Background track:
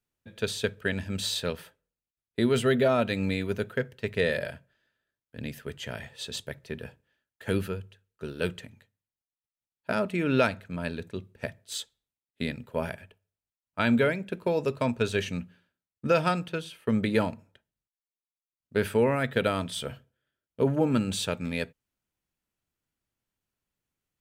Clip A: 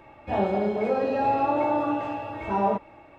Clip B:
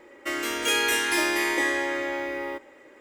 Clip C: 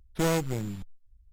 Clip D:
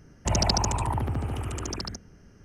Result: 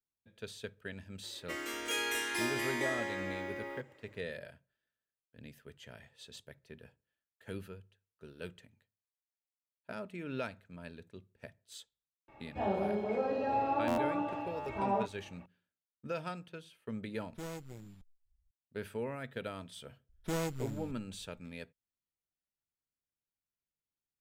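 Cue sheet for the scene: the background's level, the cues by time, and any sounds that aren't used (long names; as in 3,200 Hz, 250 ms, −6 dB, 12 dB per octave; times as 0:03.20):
background track −15 dB
0:01.23: mix in B −11 dB
0:12.28: mix in A −8.5 dB + buffer that repeats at 0:01.59/0:02.28
0:17.19: mix in C −17.5 dB
0:20.09: mix in C −9 dB
not used: D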